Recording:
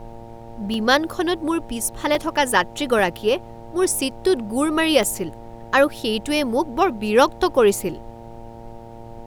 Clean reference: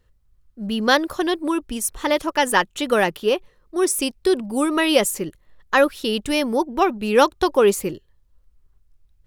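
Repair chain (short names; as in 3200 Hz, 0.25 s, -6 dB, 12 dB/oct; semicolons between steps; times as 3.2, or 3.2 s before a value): de-hum 115.5 Hz, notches 8; interpolate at 0.74/2.15/2.99/5.03, 1.6 ms; noise print and reduce 20 dB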